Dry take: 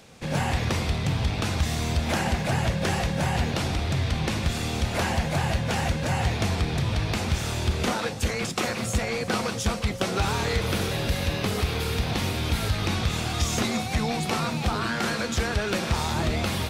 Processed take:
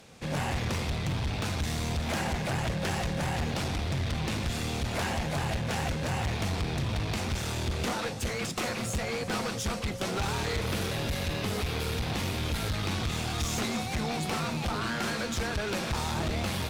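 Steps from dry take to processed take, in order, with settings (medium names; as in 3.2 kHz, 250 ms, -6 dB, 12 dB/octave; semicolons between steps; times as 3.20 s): one-sided clip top -28.5 dBFS, bottom -20.5 dBFS; trim -2.5 dB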